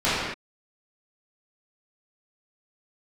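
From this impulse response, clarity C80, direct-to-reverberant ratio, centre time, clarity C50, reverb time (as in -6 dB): 0.5 dB, -15.0 dB, 95 ms, -2.5 dB, not exponential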